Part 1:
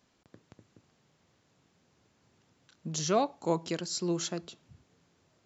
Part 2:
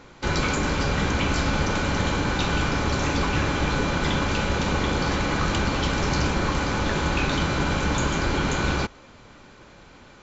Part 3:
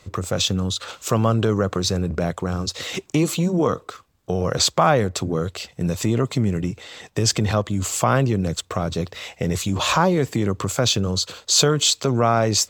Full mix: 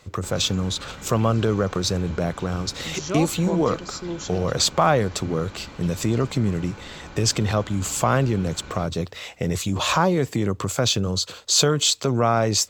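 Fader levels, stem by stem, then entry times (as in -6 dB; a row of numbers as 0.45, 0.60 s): 0.0, -17.0, -1.5 dB; 0.00, 0.00, 0.00 s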